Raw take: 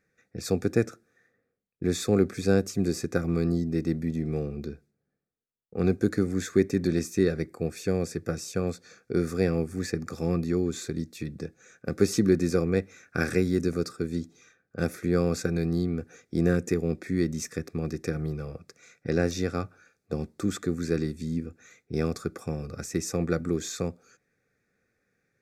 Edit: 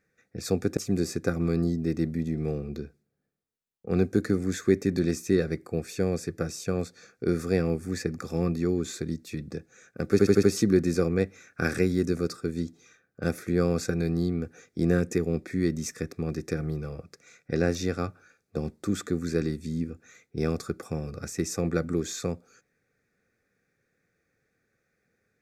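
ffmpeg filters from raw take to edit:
-filter_complex "[0:a]asplit=6[s0][s1][s2][s3][s4][s5];[s0]atrim=end=0.772[s6];[s1]atrim=start=2.648:end=12.072[s7];[s2]atrim=start=11.988:end=12.072[s8];[s3]atrim=start=11.988:end=12.072[s9];[s4]atrim=start=11.988:end=12.072[s10];[s5]atrim=start=11.988[s11];[s6][s7]acrossfade=d=0.004:c1=hsin:c2=hsin[s12];[s12][s8]acrossfade=d=0.004:c1=hsin:c2=hsin[s13];[s13][s9]acrossfade=d=0.004:c1=hsin:c2=hsin[s14];[s14][s10]acrossfade=d=0.004:c1=hsin:c2=hsin[s15];[s15][s11]acrossfade=d=0.004:c1=hsin:c2=hsin"

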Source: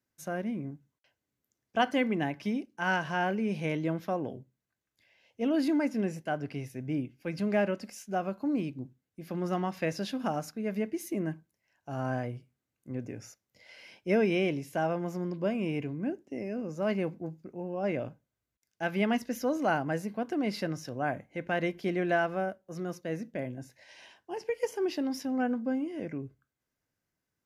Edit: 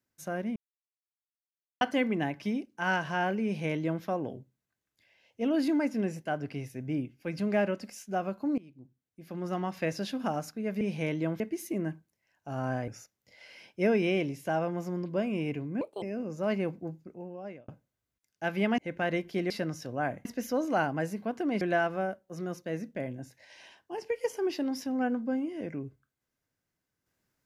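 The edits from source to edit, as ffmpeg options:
-filter_complex "[0:a]asplit=14[s0][s1][s2][s3][s4][s5][s6][s7][s8][s9][s10][s11][s12][s13];[s0]atrim=end=0.56,asetpts=PTS-STARTPTS,afade=t=out:st=0.556:d=0.004:c=hsin[s14];[s1]atrim=start=0.56:end=1.81,asetpts=PTS-STARTPTS,volume=0[s15];[s2]atrim=start=1.81:end=8.58,asetpts=PTS-STARTPTS,afade=t=in:d=0.004:c=hsin,afade=t=out:st=6.766:d=0.004:c=hsin:silence=0.0749894[s16];[s3]atrim=start=8.58:end=10.812,asetpts=PTS-STARTPTS,afade=t=in:d=1.24:silence=0.0749894[s17];[s4]atrim=start=3.438:end=4.032[s18];[s5]atrim=start=10.808:end=12.292[s19];[s6]atrim=start=13.158:end=16.094[s20];[s7]atrim=start=16.09:end=16.41,asetpts=PTS-STARTPTS,asetrate=66591,aresample=44100[s21];[s8]atrim=start=16.406:end=18.07,asetpts=PTS-STARTPTS,afade=t=out:st=0.924:d=0.74[s22];[s9]atrim=start=18.07:end=19.172,asetpts=PTS-STARTPTS,afade=t=in:d=0.004:c=hsin[s23];[s10]atrim=start=21.278:end=22.002[s24];[s11]atrim=start=20.528:end=21.282[s25];[s12]atrim=start=19.168:end=20.532[s26];[s13]atrim=start=21.998[s27];[s14][s15][s16][s17]concat=n=4:v=0:a=1[s28];[s28][s18]acrossfade=d=0.004:c1=hsin:c2=hsin[s29];[s29][s19]acrossfade=d=0.004:c1=hsin:c2=hsin[s30];[s30][s20]acrossfade=d=0.004:c1=hsin:c2=hsin[s31];[s31][s21]acrossfade=d=0.004:c1=hsin:c2=hsin[s32];[s22][s23]concat=n=2:v=0:a=1[s33];[s32][s33]acrossfade=d=0.004:c1=hsin:c2=hsin[s34];[s34][s24]acrossfade=d=0.004:c1=hsin:c2=hsin[s35];[s35][s25]acrossfade=d=0.004:c1=hsin:c2=hsin[s36];[s36][s26]acrossfade=d=0.004:c1=hsin:c2=hsin[s37];[s37][s27]acrossfade=d=0.004:c1=hsin:c2=hsin"

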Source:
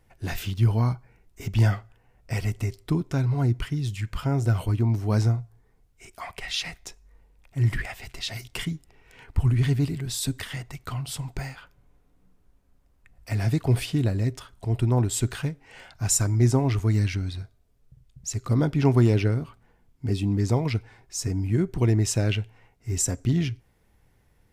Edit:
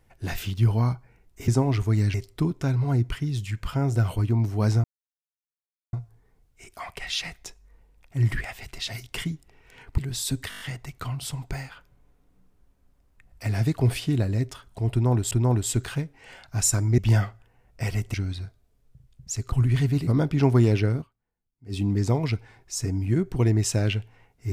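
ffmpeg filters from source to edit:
-filter_complex "[0:a]asplit=17[s0][s1][s2][s3][s4][s5][s6][s7][s8][s9][s10][s11][s12][s13][s14][s15][s16];[s0]atrim=end=1.482[s17];[s1]atrim=start=16.448:end=17.112[s18];[s2]atrim=start=2.638:end=5.34,asetpts=PTS-STARTPTS,afade=t=out:st=2.698:d=0.004:c=hsin,apad=pad_dur=1.09[s19];[s3]atrim=start=5.34:end=9.392,asetpts=PTS-STARTPTS,afade=t=in:d=0.004:c=hsin[s20];[s4]atrim=start=9.938:end=10.482[s21];[s5]atrim=start=10.458:end=10.482[s22];[s6]atrim=start=10.458:end=10.482[s23];[s7]atrim=start=10.458:end=10.482[s24];[s8]atrim=start=10.458:end=10.482[s25];[s9]atrim=start=10.458:end=15.172[s26];[s10]atrim=start=14.778:end=16.452[s27];[s11]atrim=start=1.478:end=2.642[s28];[s12]atrim=start=17.108:end=18.492[s29];[s13]atrim=start=9.388:end=9.942[s30];[s14]atrim=start=18.488:end=19.71,asetpts=PTS-STARTPTS,afade=t=out:st=0.942:d=0.28:c=exp:silence=0.0668344[s31];[s15]atrim=start=19.71:end=19.88,asetpts=PTS-STARTPTS,volume=0.0668[s32];[s16]atrim=start=19.88,asetpts=PTS-STARTPTS,afade=t=in:d=0.28:c=exp:silence=0.0668344[s33];[s17][s18]acrossfade=d=0.004:c1=hsin:c2=hsin[s34];[s19][s20]concat=n=2:v=0:a=1[s35];[s34][s35]acrossfade=d=0.004:c1=hsin:c2=hsin[s36];[s36][s21]acrossfade=d=0.004:c1=hsin:c2=hsin[s37];[s37][s22]acrossfade=d=0.004:c1=hsin:c2=hsin[s38];[s38][s23]acrossfade=d=0.004:c1=hsin:c2=hsin[s39];[s39][s24]acrossfade=d=0.004:c1=hsin:c2=hsin[s40];[s40][s25]acrossfade=d=0.004:c1=hsin:c2=hsin[s41];[s41][s26]acrossfade=d=0.004:c1=hsin:c2=hsin[s42];[s42][s27]acrossfade=d=0.004:c1=hsin:c2=hsin[s43];[s43][s28]acrossfade=d=0.004:c1=hsin:c2=hsin[s44];[s44][s29]acrossfade=d=0.004:c1=hsin:c2=hsin[s45];[s45][s30]acrossfade=d=0.004:c1=hsin:c2=hsin[s46];[s31][s32][s33]concat=n=3:v=0:a=1[s47];[s46][s47]acrossfade=d=0.004:c1=hsin:c2=hsin"

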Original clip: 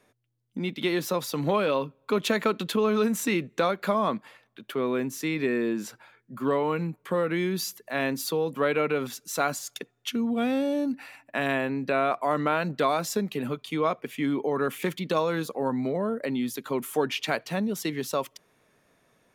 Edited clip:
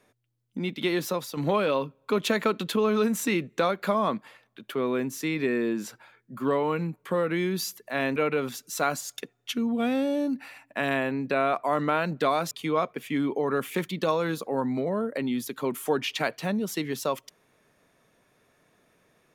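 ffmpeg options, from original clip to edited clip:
-filter_complex "[0:a]asplit=4[s0][s1][s2][s3];[s0]atrim=end=1.37,asetpts=PTS-STARTPTS,afade=t=out:st=1.05:d=0.32:silence=0.446684[s4];[s1]atrim=start=1.37:end=8.162,asetpts=PTS-STARTPTS,afade=t=in:d=0.004:c=hsin:silence=0.446684[s5];[s2]atrim=start=8.738:end=13.092[s6];[s3]atrim=start=13.588[s7];[s4][s5]concat=n=2:v=0:a=1[s8];[s8][s6]acrossfade=d=0.004:c1=hsin:c2=hsin[s9];[s9][s7]acrossfade=d=0.004:c1=hsin:c2=hsin"

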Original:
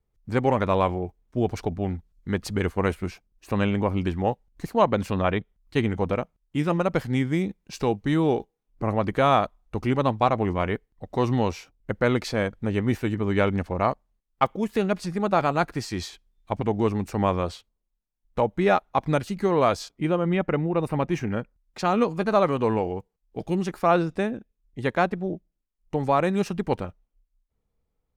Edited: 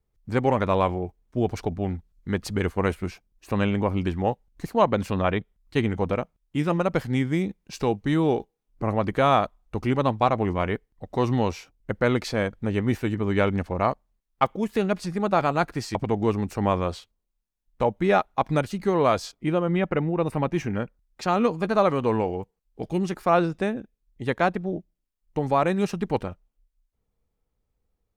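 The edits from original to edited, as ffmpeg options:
-filter_complex "[0:a]asplit=2[s0][s1];[s0]atrim=end=15.952[s2];[s1]atrim=start=16.518[s3];[s2][s3]acrossfade=d=0.004:c1=hsin:c2=hsin"

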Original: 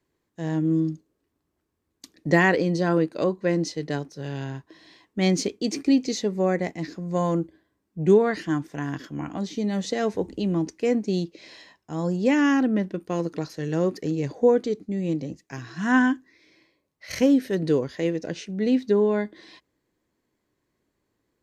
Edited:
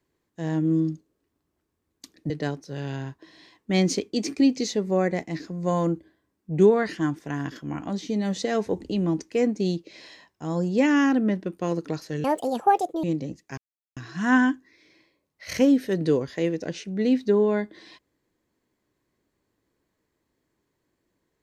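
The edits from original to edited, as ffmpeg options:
-filter_complex "[0:a]asplit=5[s0][s1][s2][s3][s4];[s0]atrim=end=2.302[s5];[s1]atrim=start=3.778:end=13.724[s6];[s2]atrim=start=13.72:end=15.04,asetpts=PTS-STARTPTS,asetrate=73206,aresample=44100,atrim=end_sample=35067,asetpts=PTS-STARTPTS[s7];[s3]atrim=start=15.036:end=15.58,asetpts=PTS-STARTPTS,afade=t=out:st=0.54:d=0.004:c=hsin,apad=pad_dur=0.39[s8];[s4]atrim=start=15.58,asetpts=PTS-STARTPTS,afade=t=in:d=0.004:c=hsin[s9];[s5][s6]acrossfade=d=0.004:c1=hsin:c2=hsin[s10];[s10][s7]acrossfade=d=0.004:c1=hsin:c2=hsin[s11];[s8][s9]concat=n=2:v=0:a=1[s12];[s11][s12]acrossfade=d=0.004:c1=hsin:c2=hsin"

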